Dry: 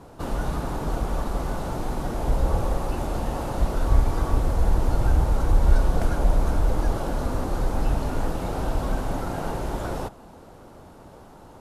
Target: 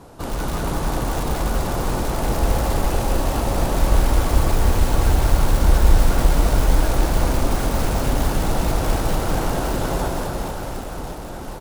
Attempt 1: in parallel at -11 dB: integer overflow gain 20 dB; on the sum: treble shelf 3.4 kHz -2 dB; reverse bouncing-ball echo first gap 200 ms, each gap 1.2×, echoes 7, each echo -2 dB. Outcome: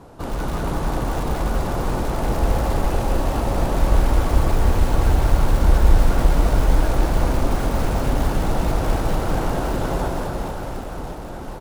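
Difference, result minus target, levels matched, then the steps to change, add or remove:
8 kHz band -5.5 dB
change: treble shelf 3.4 kHz +5 dB

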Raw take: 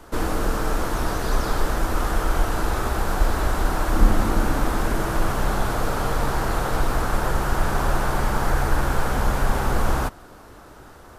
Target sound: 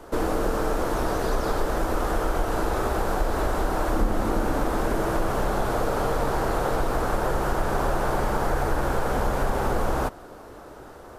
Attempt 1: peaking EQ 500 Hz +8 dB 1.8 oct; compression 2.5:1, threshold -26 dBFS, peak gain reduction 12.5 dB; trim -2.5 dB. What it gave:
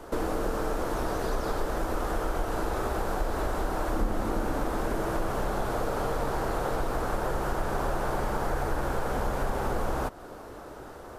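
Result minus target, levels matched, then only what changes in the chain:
compression: peak gain reduction +5 dB
change: compression 2.5:1, threshold -18 dBFS, peak gain reduction 7.5 dB

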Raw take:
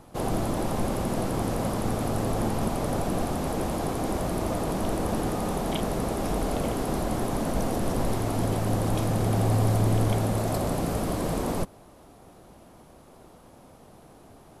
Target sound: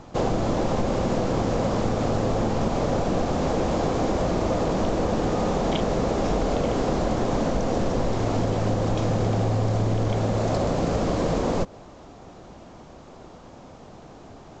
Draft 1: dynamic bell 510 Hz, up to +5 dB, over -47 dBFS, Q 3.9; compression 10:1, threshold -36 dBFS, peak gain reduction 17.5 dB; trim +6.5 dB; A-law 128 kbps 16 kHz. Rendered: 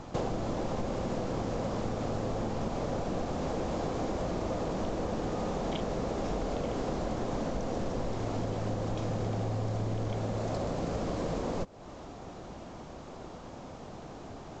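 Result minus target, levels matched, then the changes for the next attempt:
compression: peak gain reduction +9.5 dB
change: compression 10:1, threshold -25.5 dBFS, peak gain reduction 8 dB

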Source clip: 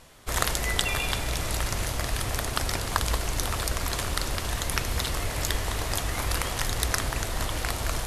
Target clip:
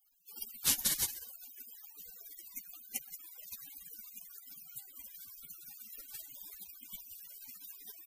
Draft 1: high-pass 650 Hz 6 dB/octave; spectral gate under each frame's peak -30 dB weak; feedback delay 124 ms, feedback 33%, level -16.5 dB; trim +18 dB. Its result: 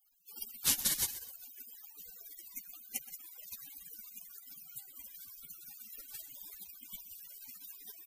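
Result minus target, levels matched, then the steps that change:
echo-to-direct +9 dB
change: feedback delay 124 ms, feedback 33%, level -25.5 dB

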